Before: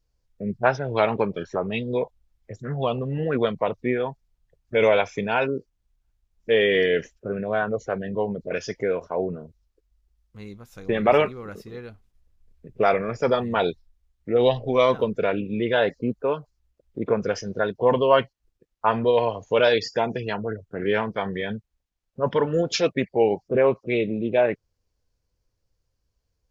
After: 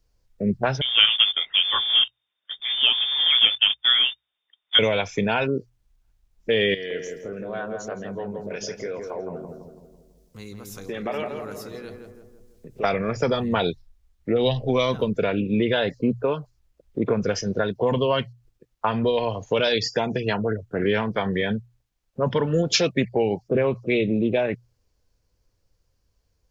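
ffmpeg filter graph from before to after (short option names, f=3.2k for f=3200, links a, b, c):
-filter_complex "[0:a]asettb=1/sr,asplit=3[a][b][c];[a]atrim=end=0.814[d];[b]atrim=start=0.81:end=4.79,asetpts=PTS-STARTPTS,afade=t=in:d=0.004:c=qsin,afade=t=out:st=3.976:d=0.004:c=qsin,highpass=180,acrusher=bits=3:mode=log:mix=0:aa=0.000001,lowpass=f=3.1k:t=q:w=0.5098,lowpass=f=3.1k:t=q:w=0.6013,lowpass=f=3.1k:t=q:w=0.9,lowpass=f=3.1k:t=q:w=2.563,afreqshift=-3700[e];[c]atrim=start=4.786[f];[d][e]acrossfade=d=0.004:c1=hsin:c2=qsin[g];[g][f]acrossfade=d=0.004:c1=qsin:c2=hsin,asettb=1/sr,asplit=3[h][i][j];[h]atrim=end=6.744[k];[i]atrim=start=6.74:end=12.84,asetpts=PTS-STARTPTS,afade=t=in:d=0.004:c=qsin,afade=t=out:st=6.096:d=0.004:c=qsin,bass=f=250:g=-3,treble=f=4k:g=12,acompressor=threshold=-45dB:ratio=2:attack=3.2:release=140:knee=1:detection=peak,asplit=2[l][m];[m]adelay=165,lowpass=f=1.4k:p=1,volume=-4dB,asplit=2[n][o];[o]adelay=165,lowpass=f=1.4k:p=1,volume=0.54,asplit=2[p][q];[q]adelay=165,lowpass=f=1.4k:p=1,volume=0.54,asplit=2[r][s];[s]adelay=165,lowpass=f=1.4k:p=1,volume=0.54,asplit=2[t][u];[u]adelay=165,lowpass=f=1.4k:p=1,volume=0.54,asplit=2[v][w];[w]adelay=165,lowpass=f=1.4k:p=1,volume=0.54,asplit=2[x][y];[y]adelay=165,lowpass=f=1.4k:p=1,volume=0.54[z];[l][n][p][r][t][v][x][z]amix=inputs=8:normalize=0,atrim=end_sample=269010[aa];[j]atrim=start=12.836[ab];[k][aa]acrossfade=d=0.004:c1=hsin:c2=qsin[ac];[ac][ab]acrossfade=d=0.004:c1=qsin:c2=hsin,bandreject=f=60:t=h:w=6,bandreject=f=120:t=h:w=6,acrossover=split=220|3000[ad][ae][af];[ae]acompressor=threshold=-27dB:ratio=6[ag];[ad][ag][af]amix=inputs=3:normalize=0,volume=6dB"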